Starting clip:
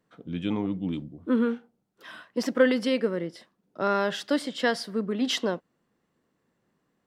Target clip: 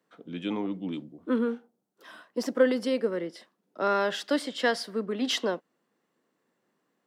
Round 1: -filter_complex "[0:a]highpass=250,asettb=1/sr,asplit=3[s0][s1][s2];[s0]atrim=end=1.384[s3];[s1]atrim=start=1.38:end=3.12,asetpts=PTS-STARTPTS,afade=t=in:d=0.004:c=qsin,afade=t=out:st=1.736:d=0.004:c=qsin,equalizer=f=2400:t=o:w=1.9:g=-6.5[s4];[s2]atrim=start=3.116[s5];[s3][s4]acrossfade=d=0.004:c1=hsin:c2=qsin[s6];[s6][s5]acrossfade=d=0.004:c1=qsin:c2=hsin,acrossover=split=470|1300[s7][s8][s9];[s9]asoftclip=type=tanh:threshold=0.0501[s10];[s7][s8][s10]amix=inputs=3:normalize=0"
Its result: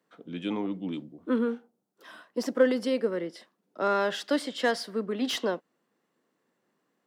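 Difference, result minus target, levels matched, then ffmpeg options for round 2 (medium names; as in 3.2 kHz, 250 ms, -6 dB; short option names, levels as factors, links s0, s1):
saturation: distortion +16 dB
-filter_complex "[0:a]highpass=250,asettb=1/sr,asplit=3[s0][s1][s2];[s0]atrim=end=1.384[s3];[s1]atrim=start=1.38:end=3.12,asetpts=PTS-STARTPTS,afade=t=in:d=0.004:c=qsin,afade=t=out:st=1.736:d=0.004:c=qsin,equalizer=f=2400:t=o:w=1.9:g=-6.5[s4];[s2]atrim=start=3.116[s5];[s3][s4]acrossfade=d=0.004:c1=hsin:c2=qsin[s6];[s6][s5]acrossfade=d=0.004:c1=qsin:c2=hsin,acrossover=split=470|1300[s7][s8][s9];[s9]asoftclip=type=tanh:threshold=0.178[s10];[s7][s8][s10]amix=inputs=3:normalize=0"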